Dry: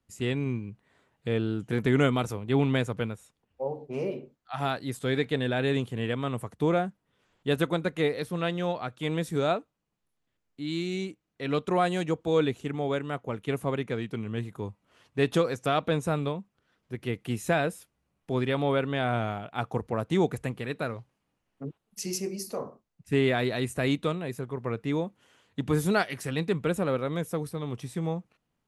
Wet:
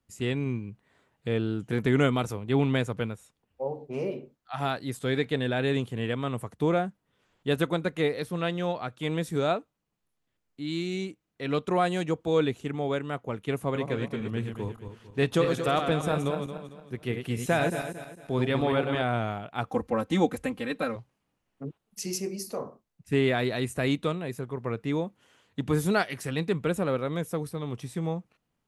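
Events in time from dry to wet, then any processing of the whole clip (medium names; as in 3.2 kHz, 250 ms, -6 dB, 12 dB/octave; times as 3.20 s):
13.64–19.02 s: backward echo that repeats 113 ms, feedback 59%, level -6 dB
19.67–20.96 s: comb 3.8 ms, depth 91%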